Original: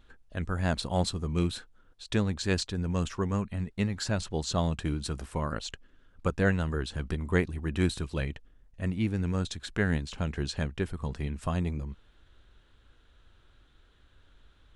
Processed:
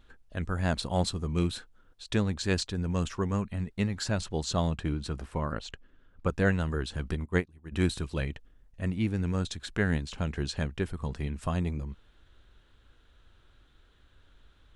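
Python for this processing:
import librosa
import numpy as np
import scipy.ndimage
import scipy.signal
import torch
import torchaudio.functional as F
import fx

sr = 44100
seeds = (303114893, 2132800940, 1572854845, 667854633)

y = fx.high_shelf(x, sr, hz=fx.line((4.7, 6100.0), (6.28, 4400.0)), db=-11.0, at=(4.7, 6.28), fade=0.02)
y = fx.upward_expand(y, sr, threshold_db=-35.0, expansion=2.5, at=(7.24, 7.71), fade=0.02)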